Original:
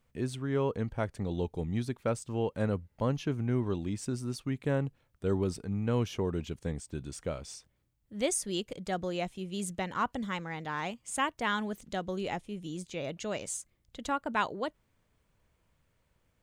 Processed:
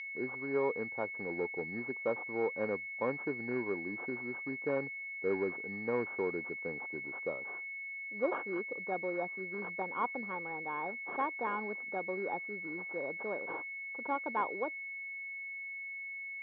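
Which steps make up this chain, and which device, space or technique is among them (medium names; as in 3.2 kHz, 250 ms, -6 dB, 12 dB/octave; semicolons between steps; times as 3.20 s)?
toy sound module (decimation joined by straight lines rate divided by 6×; class-D stage that switches slowly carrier 2.2 kHz; cabinet simulation 500–4700 Hz, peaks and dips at 650 Hz -9 dB, 1.3 kHz -3 dB, 2.3 kHz -8 dB, 4.1 kHz -7 dB); trim +5 dB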